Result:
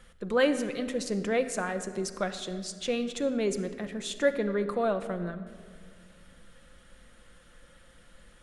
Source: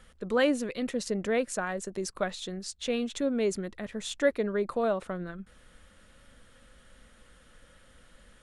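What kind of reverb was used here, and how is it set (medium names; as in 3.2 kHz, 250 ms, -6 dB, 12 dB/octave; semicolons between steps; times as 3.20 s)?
simulated room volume 3100 m³, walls mixed, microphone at 0.83 m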